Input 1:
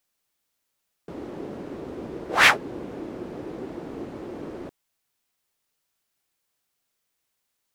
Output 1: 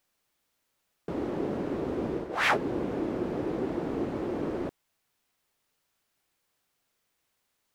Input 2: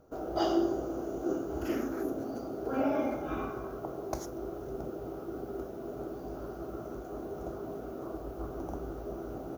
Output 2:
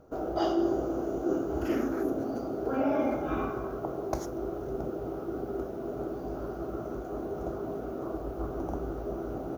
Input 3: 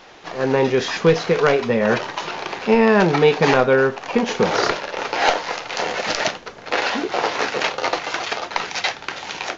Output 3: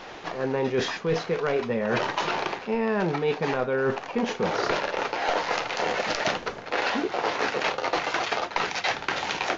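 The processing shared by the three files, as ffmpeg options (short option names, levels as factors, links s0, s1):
-af "highshelf=f=3700:g=-6,areverse,acompressor=threshold=0.0447:ratio=10,areverse,volume=1.68"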